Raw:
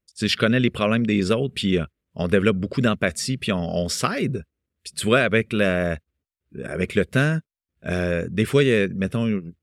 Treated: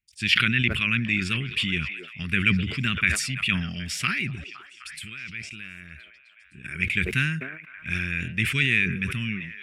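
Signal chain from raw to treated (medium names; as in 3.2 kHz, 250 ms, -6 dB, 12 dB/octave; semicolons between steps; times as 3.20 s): 4.35–6.64 s: compression 10:1, threshold -33 dBFS, peak gain reduction 20.5 dB; FFT filter 120 Hz 0 dB, 350 Hz -10 dB, 520 Hz -30 dB, 2.4 kHz +13 dB, 4 kHz -1 dB; repeats whose band climbs or falls 256 ms, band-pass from 570 Hz, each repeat 0.7 oct, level -9.5 dB; decay stretcher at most 56 dB/s; trim -4.5 dB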